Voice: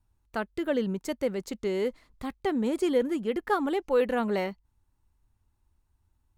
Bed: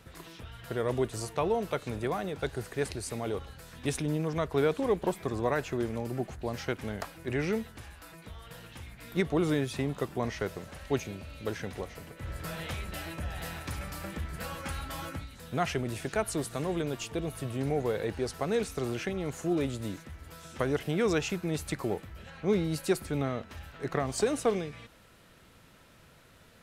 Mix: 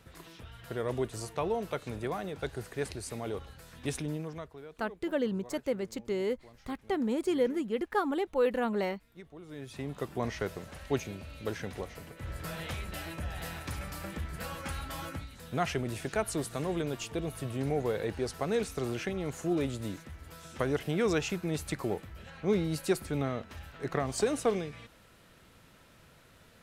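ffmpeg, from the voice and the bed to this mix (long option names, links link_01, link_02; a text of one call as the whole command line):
ffmpeg -i stem1.wav -i stem2.wav -filter_complex "[0:a]adelay=4450,volume=-3dB[link_01];[1:a]volume=17.5dB,afade=type=out:start_time=3.98:duration=0.6:silence=0.11885,afade=type=in:start_time=9.48:duration=0.76:silence=0.0944061[link_02];[link_01][link_02]amix=inputs=2:normalize=0" out.wav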